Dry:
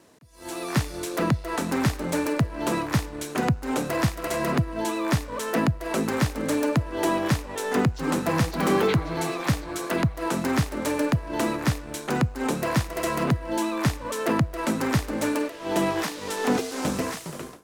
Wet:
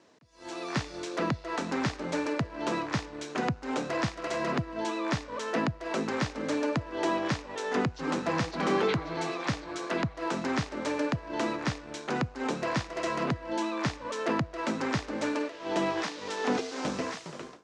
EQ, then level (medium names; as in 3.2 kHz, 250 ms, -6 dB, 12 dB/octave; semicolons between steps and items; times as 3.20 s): low-pass 6.4 kHz 24 dB/octave; bass shelf 130 Hz -12 dB; -3.5 dB